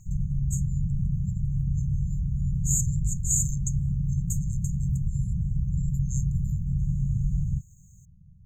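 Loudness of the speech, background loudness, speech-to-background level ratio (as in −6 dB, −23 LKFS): −31.5 LKFS, −28.5 LKFS, −3.0 dB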